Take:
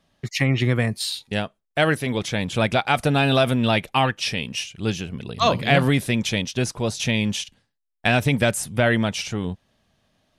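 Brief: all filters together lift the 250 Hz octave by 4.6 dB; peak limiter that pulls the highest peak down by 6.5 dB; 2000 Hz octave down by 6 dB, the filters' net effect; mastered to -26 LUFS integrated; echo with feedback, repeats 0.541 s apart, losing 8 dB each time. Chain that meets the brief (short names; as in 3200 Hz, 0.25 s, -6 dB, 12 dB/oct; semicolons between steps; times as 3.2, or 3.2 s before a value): bell 250 Hz +5.5 dB; bell 2000 Hz -8 dB; limiter -9.5 dBFS; feedback echo 0.541 s, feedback 40%, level -8 dB; gain -4 dB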